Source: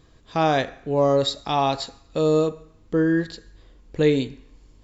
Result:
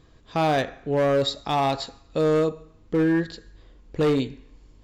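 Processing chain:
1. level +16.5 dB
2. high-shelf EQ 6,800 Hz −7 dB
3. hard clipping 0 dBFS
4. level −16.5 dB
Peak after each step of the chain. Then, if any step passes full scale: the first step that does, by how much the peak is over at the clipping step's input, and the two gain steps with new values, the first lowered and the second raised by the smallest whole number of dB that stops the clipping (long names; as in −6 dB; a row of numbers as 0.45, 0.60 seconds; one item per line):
+8.5, +8.5, 0.0, −16.5 dBFS
step 1, 8.5 dB
step 1 +7.5 dB, step 4 −7.5 dB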